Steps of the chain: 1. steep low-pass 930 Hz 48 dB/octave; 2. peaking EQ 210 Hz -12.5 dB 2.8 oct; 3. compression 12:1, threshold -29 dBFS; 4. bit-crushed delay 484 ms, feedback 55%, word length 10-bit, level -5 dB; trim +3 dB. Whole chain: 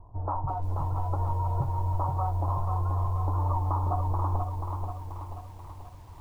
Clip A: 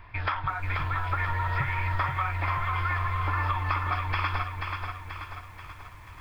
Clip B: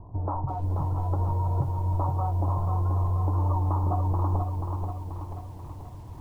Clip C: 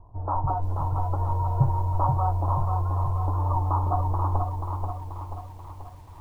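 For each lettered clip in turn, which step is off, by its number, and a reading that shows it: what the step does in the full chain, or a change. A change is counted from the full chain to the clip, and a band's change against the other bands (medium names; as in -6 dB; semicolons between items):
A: 1, 1 kHz band +5.5 dB; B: 2, 250 Hz band +4.0 dB; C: 3, mean gain reduction 2.5 dB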